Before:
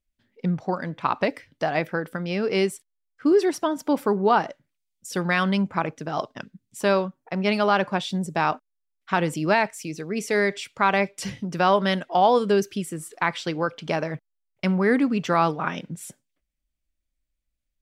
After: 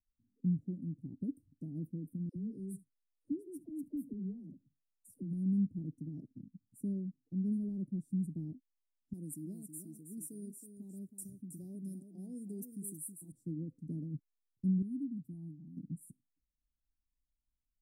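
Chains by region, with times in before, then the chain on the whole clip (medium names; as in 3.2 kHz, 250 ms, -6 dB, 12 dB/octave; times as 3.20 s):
2.29–5.33 s: delay 72 ms -23 dB + compression 4:1, threshold -25 dBFS + phase dispersion lows, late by 72 ms, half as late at 430 Hz
9.13–13.32 s: tilt EQ +4 dB/octave + delay 321 ms -8.5 dB
14.82–15.77 s: bass shelf 450 Hz -8.5 dB + static phaser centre 1.8 kHz, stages 6
whole clip: Chebyshev band-stop 290–9200 Hz, order 4; treble shelf 3.5 kHz -9.5 dB; trim -6.5 dB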